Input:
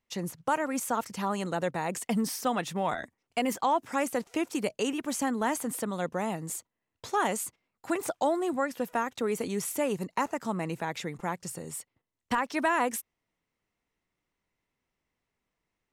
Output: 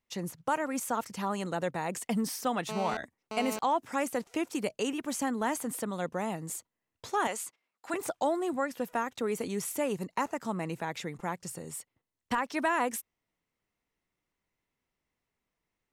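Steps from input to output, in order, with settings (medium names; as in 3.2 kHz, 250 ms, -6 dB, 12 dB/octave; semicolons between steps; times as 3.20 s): 2.69–3.59 s: mobile phone buzz -35 dBFS; 7.27–7.94 s: frequency weighting A; trim -2 dB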